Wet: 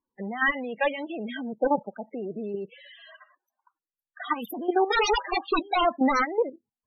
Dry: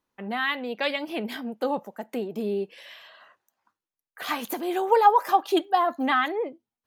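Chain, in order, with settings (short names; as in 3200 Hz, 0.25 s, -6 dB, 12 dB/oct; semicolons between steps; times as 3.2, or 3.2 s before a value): wrapped overs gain 16.5 dB; level quantiser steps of 13 dB; loudest bins only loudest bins 16; gain +6.5 dB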